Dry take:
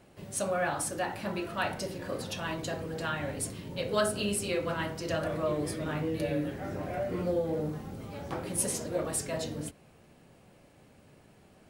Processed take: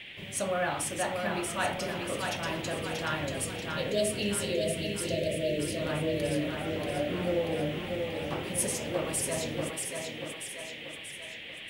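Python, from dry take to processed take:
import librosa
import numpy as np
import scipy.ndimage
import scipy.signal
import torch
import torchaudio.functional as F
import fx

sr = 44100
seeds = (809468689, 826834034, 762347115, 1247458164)

y = fx.spec_erase(x, sr, start_s=3.29, length_s=2.48, low_hz=680.0, high_hz=2600.0)
y = fx.dmg_noise_band(y, sr, seeds[0], low_hz=1800.0, high_hz=3400.0, level_db=-46.0)
y = fx.echo_thinned(y, sr, ms=635, feedback_pct=52, hz=200.0, wet_db=-4.0)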